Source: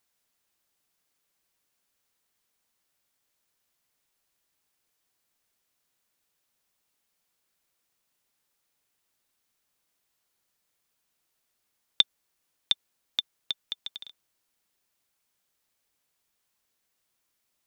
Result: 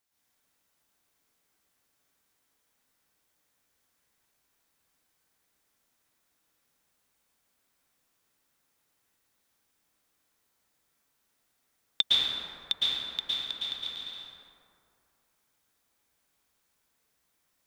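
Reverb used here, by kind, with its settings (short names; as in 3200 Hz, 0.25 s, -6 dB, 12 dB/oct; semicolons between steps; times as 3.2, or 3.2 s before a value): plate-style reverb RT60 2.5 s, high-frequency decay 0.4×, pre-delay 0.1 s, DRR -9 dB; gain -5 dB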